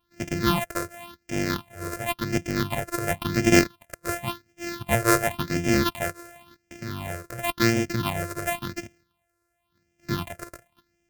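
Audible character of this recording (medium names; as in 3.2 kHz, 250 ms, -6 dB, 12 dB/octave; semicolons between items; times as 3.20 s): a buzz of ramps at a fixed pitch in blocks of 128 samples; phasing stages 6, 0.93 Hz, lowest notch 220–1100 Hz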